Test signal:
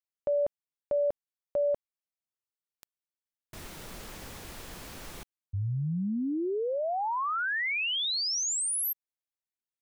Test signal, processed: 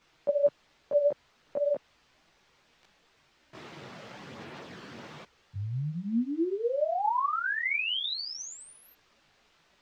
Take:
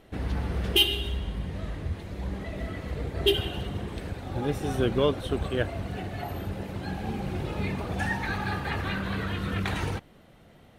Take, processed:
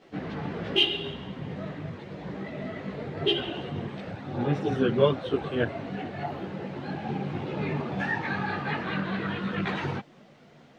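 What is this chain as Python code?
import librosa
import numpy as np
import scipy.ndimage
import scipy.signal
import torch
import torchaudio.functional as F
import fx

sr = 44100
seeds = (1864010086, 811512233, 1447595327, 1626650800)

y = scipy.signal.sosfilt(scipy.signal.butter(4, 130.0, 'highpass', fs=sr, output='sos'), x)
y = fx.quant_dither(y, sr, seeds[0], bits=10, dither='triangular')
y = fx.chorus_voices(y, sr, voices=4, hz=0.82, base_ms=17, depth_ms=4.6, mix_pct=60)
y = fx.air_absorb(y, sr, metres=180.0)
y = y * 10.0 ** (5.0 / 20.0)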